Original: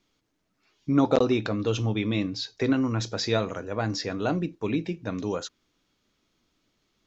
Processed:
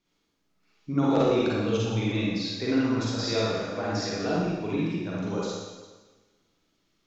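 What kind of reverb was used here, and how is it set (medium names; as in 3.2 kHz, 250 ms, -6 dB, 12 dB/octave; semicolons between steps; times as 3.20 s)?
Schroeder reverb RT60 1.3 s, DRR -7 dB; trim -7.5 dB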